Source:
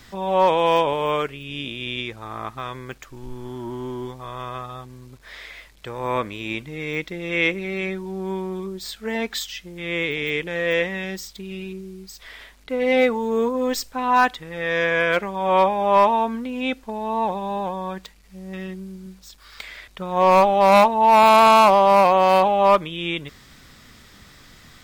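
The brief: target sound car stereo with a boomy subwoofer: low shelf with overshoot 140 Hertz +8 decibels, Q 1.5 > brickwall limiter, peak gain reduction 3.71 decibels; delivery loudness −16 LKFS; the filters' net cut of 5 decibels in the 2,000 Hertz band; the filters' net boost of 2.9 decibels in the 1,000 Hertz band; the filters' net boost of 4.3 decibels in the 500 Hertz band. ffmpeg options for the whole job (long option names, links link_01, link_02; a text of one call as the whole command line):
ffmpeg -i in.wav -af "lowshelf=frequency=140:width_type=q:width=1.5:gain=8,equalizer=frequency=500:width_type=o:gain=5,equalizer=frequency=1000:width_type=o:gain=3.5,equalizer=frequency=2000:width_type=o:gain=-7.5,volume=2.5dB,alimiter=limit=-3dB:level=0:latency=1" out.wav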